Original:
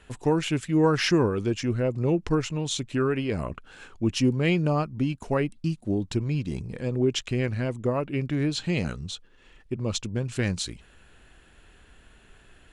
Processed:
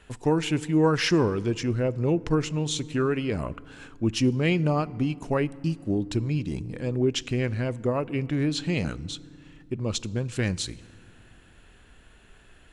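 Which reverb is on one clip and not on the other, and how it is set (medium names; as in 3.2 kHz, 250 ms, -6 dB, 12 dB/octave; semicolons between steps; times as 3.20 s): FDN reverb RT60 2.3 s, low-frequency decay 1.55×, high-frequency decay 0.55×, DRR 19.5 dB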